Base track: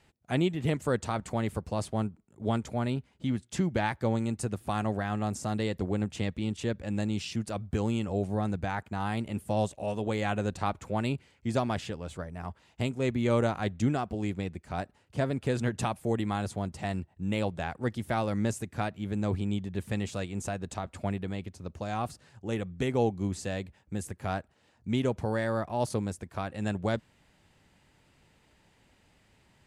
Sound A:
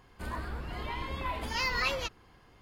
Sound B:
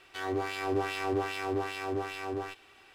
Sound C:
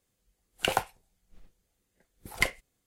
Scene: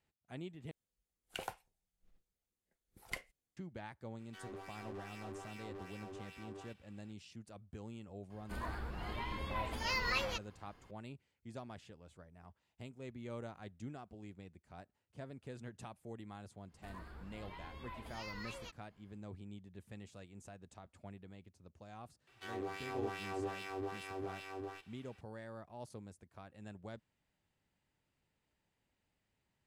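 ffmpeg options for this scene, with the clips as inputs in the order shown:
-filter_complex "[2:a]asplit=2[s0][s1];[1:a]asplit=2[s2][s3];[0:a]volume=0.106[s4];[s0]asoftclip=type=tanh:threshold=0.0316[s5];[s3]alimiter=level_in=1.06:limit=0.0631:level=0:latency=1:release=71,volume=0.944[s6];[s4]asplit=2[s7][s8];[s7]atrim=end=0.714[s9];[3:a]atrim=end=2.86,asetpts=PTS-STARTPTS,volume=0.15[s10];[s8]atrim=start=3.566[s11];[s5]atrim=end=2.94,asetpts=PTS-STARTPTS,volume=0.2,afade=t=in:d=0.004:c=hsin,afade=t=out:st=2.936:d=0.004:c=hsin,adelay=4190[s12];[s2]atrim=end=2.61,asetpts=PTS-STARTPTS,volume=0.562,afade=t=in:d=0.004:c=hsin,afade=t=out:st=2.606:d=0.004:c=hsin,adelay=8300[s13];[s6]atrim=end=2.61,asetpts=PTS-STARTPTS,volume=0.188,afade=t=in:d=0.1,afade=t=out:st=2.51:d=0.1,adelay=16630[s14];[s1]atrim=end=2.94,asetpts=PTS-STARTPTS,volume=0.316,afade=t=in:d=0.004:c=hsin,afade=t=out:st=2.936:d=0.004:c=hsin,adelay=22270[s15];[s9][s10]acrossfade=d=0.004:c1=hsin:c2=hsin[s16];[s16][s11]acrossfade=d=0.004:c1=hsin:c2=hsin[s17];[s17][s12][s13][s14][s15]amix=inputs=5:normalize=0"

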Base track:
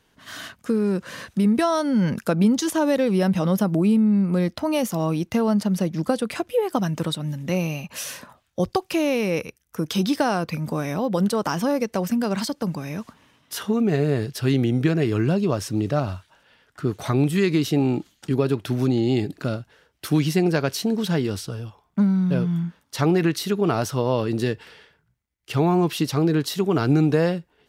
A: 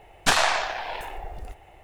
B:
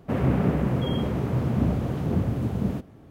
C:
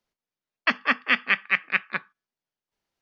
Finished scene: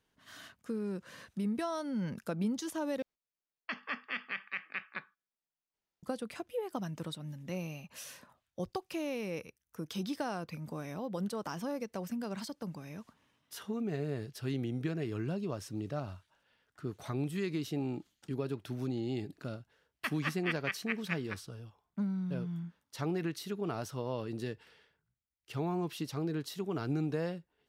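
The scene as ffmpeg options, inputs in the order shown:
-filter_complex "[3:a]asplit=2[s0][s1];[0:a]volume=0.178[s2];[s0]alimiter=limit=0.188:level=0:latency=1:release=31[s3];[s2]asplit=2[s4][s5];[s4]atrim=end=3.024[s6];[s3]atrim=end=3.01,asetpts=PTS-STARTPTS,volume=0.335[s7];[s5]atrim=start=6.026[s8];[s1]atrim=end=3.01,asetpts=PTS-STARTPTS,volume=0.188,afade=t=in:d=0.004:c=hsin,afade=t=out:st=3.006:d=0.004:c=hsin,adelay=19370[s9];[s6][s7]acrossfade=d=0.004:c1=hsin:c2=hsin[s10];[s10][s8]acrossfade=d=0.004:c1=hsin:c2=hsin[s11];[s11][s9]amix=inputs=2:normalize=0"

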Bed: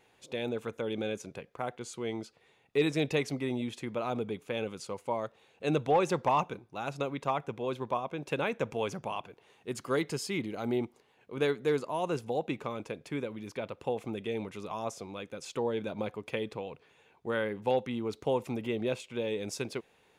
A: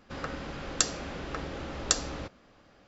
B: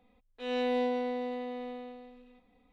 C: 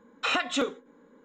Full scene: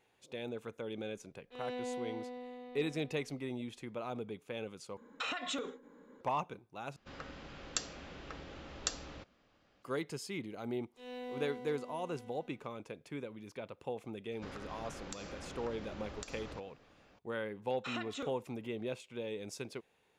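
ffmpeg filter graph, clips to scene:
-filter_complex "[2:a]asplit=2[s0][s1];[3:a]asplit=2[s2][s3];[1:a]asplit=2[s4][s5];[0:a]volume=0.422[s6];[s2]acompressor=threshold=0.0224:ratio=6:attack=3.2:release=140:knee=1:detection=peak[s7];[s4]equalizer=f=3000:t=o:w=1.1:g=4[s8];[s1]aeval=exprs='sgn(val(0))*max(abs(val(0))-0.00335,0)':c=same[s9];[s5]acompressor=threshold=0.0126:ratio=6:attack=3.2:release=140:knee=1:detection=peak[s10];[s6]asplit=3[s11][s12][s13];[s11]atrim=end=4.974[s14];[s7]atrim=end=1.24,asetpts=PTS-STARTPTS,volume=0.841[s15];[s12]atrim=start=6.206:end=6.964[s16];[s8]atrim=end=2.87,asetpts=PTS-STARTPTS,volume=0.266[s17];[s13]atrim=start=9.826[s18];[s0]atrim=end=2.72,asetpts=PTS-STARTPTS,volume=0.299,afade=t=in:d=0.004:c=hsin,afade=t=out:st=2.716:d=0.004:c=hsin,adelay=1120[s19];[s9]atrim=end=2.72,asetpts=PTS-STARTPTS,volume=0.224,afade=t=in:d=0.004:c=hsin,afade=t=out:st=2.716:d=0.004:c=hsin,adelay=10570[s20];[s10]atrim=end=2.87,asetpts=PTS-STARTPTS,volume=0.562,afade=t=in:d=0.004:c=hsin,afade=t=out:st=2.866:d=0.004:c=hsin,adelay=14320[s21];[s3]atrim=end=1.24,asetpts=PTS-STARTPTS,volume=0.178,afade=t=in:d=0.004:c=hsin,afade=t=out:st=1.236:d=0.004:c=hsin,adelay=17610[s22];[s14][s15]acrossfade=d=0.004:c1=hsin:c2=hsin[s23];[s23][s16]acrossfade=d=0.004:c1=hsin:c2=hsin[s24];[s24][s17]acrossfade=d=0.004:c1=hsin:c2=hsin[s25];[s25][s18]acrossfade=d=0.004:c1=hsin:c2=hsin[s26];[s26][s19][s20][s21][s22]amix=inputs=5:normalize=0"

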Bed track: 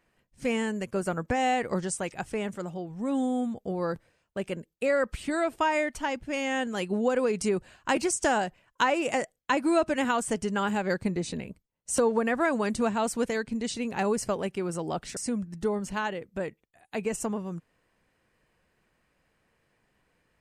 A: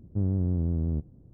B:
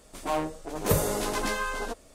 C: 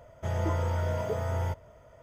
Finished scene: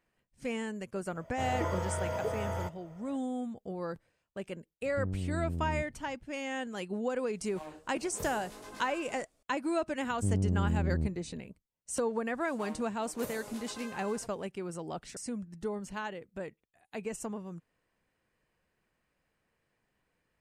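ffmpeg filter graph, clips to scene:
-filter_complex "[1:a]asplit=2[s0][s1];[2:a]asplit=2[s2][s3];[0:a]volume=0.422[s4];[3:a]lowshelf=f=160:g=-9[s5];[s0]alimiter=limit=0.0668:level=0:latency=1:release=71[s6];[s2]flanger=delay=19:depth=4.5:speed=2.8[s7];[s3]highpass=f=340:p=1[s8];[s5]atrim=end=2.02,asetpts=PTS-STARTPTS,volume=0.891,afade=t=in:d=0.004:c=hsin,afade=t=out:st=2.016:d=0.004:c=hsin,adelay=1150[s9];[s6]atrim=end=1.33,asetpts=PTS-STARTPTS,volume=0.596,afade=t=in:d=0.004:c=hsin,afade=t=out:st=1.326:d=0.004:c=hsin,adelay=4820[s10];[s7]atrim=end=2.14,asetpts=PTS-STARTPTS,volume=0.168,afade=t=in:d=0.004:c=hsin,afade=t=out:st=2.136:d=0.004:c=hsin,adelay=7290[s11];[s1]atrim=end=1.33,asetpts=PTS-STARTPTS,volume=0.708,afade=t=in:d=0.004:c=hsin,afade=t=out:st=1.326:d=0.004:c=hsin,adelay=10070[s12];[s8]atrim=end=2.14,asetpts=PTS-STARTPTS,volume=0.158,afade=t=in:d=0.004:c=hsin,afade=t=out:st=2.136:d=0.004:c=hsin,adelay=12330[s13];[s4][s9][s10][s11][s12][s13]amix=inputs=6:normalize=0"

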